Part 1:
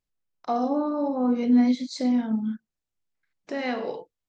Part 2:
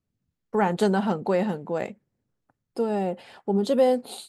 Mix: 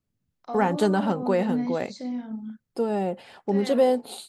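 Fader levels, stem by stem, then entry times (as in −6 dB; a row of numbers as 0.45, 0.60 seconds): −8.5, 0.0 decibels; 0.00, 0.00 seconds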